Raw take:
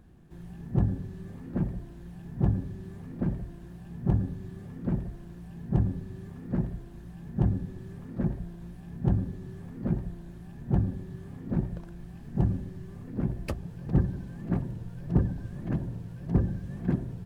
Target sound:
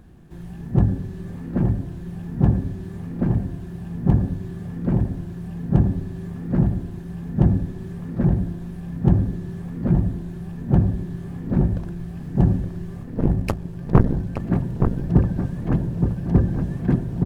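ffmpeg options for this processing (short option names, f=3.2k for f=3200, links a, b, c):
-filter_complex "[0:a]asettb=1/sr,asplit=3[a][b][c];[a]atrim=end=13.034[d];[b]atrim=start=13.03:end=14.4,asetpts=PTS-STARTPTS,afade=t=in:d=0.004:c=qsin,afade=t=out:st=1.366:d=0.004:c=qsin,aeval=exprs='0.282*(cos(1*acos(clip(val(0)/0.282,-1,1)))-cos(1*PI/2))+0.0501*(cos(4*acos(clip(val(0)/0.282,-1,1)))-cos(4*PI/2))+0.126*(cos(6*acos(clip(val(0)/0.282,-1,1)))-cos(6*PI/2))+0.0126*(cos(7*acos(clip(val(0)/0.282,-1,1)))-cos(7*PI/2))+0.0355*(cos(8*acos(clip(val(0)/0.282,-1,1)))-cos(8*PI/2))':c=same[e];[c]atrim=start=14.396[f];[d][e]acrossfade=d=0.004:c1=hsin:c2=qsin[g];[g][f]acrossfade=d=0.004:c1=qsin:c2=hsin,asplit=2[h][i];[i]adelay=870,lowpass=f=1.6k:p=1,volume=-5dB,asplit=2[j][k];[k]adelay=870,lowpass=f=1.6k:p=1,volume=0.49,asplit=2[l][m];[m]adelay=870,lowpass=f=1.6k:p=1,volume=0.49,asplit=2[n][o];[o]adelay=870,lowpass=f=1.6k:p=1,volume=0.49,asplit=2[p][q];[q]adelay=870,lowpass=f=1.6k:p=1,volume=0.49,asplit=2[r][s];[s]adelay=870,lowpass=f=1.6k:p=1,volume=0.49[t];[j][l][n][p][r][t]amix=inputs=6:normalize=0[u];[h][u]amix=inputs=2:normalize=0,volume=7.5dB"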